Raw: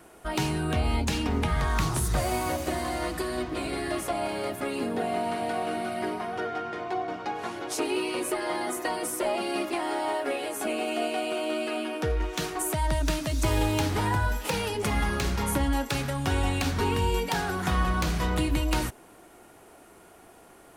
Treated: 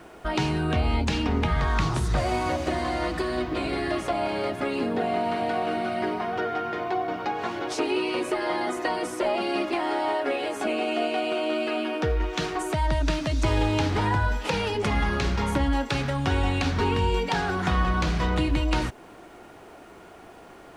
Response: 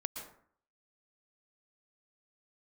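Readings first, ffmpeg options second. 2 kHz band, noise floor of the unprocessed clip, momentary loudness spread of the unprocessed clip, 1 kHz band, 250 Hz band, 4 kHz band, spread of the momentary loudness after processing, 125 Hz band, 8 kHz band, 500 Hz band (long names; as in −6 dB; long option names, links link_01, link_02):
+2.5 dB, −53 dBFS, 5 LU, +3.0 dB, +2.5 dB, +1.5 dB, 4 LU, +2.5 dB, −6.5 dB, +3.0 dB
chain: -filter_complex "[0:a]asplit=2[link_01][link_02];[link_02]acompressor=threshold=-34dB:ratio=6,volume=0dB[link_03];[link_01][link_03]amix=inputs=2:normalize=0,lowpass=5000,acrusher=bits=10:mix=0:aa=0.000001"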